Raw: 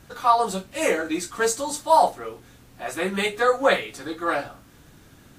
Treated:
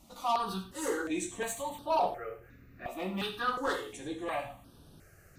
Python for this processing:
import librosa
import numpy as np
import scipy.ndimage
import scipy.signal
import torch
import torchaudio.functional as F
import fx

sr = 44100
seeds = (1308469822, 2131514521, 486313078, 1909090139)

y = fx.band_shelf(x, sr, hz=7000.0, db=-16.0, octaves=1.7, at=(1.69, 3.22))
y = 10.0 ** (-16.5 / 20.0) * np.tanh(y / 10.0 ** (-16.5 / 20.0))
y = fx.rev_gated(y, sr, seeds[0], gate_ms=120, shape='flat', drr_db=7.0)
y = fx.phaser_held(y, sr, hz=2.8, low_hz=430.0, high_hz=7100.0)
y = y * 10.0 ** (-5.0 / 20.0)